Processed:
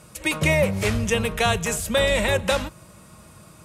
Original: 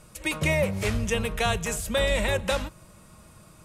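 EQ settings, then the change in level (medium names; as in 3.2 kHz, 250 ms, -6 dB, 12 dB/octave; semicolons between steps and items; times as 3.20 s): high-pass 62 Hz; +4.5 dB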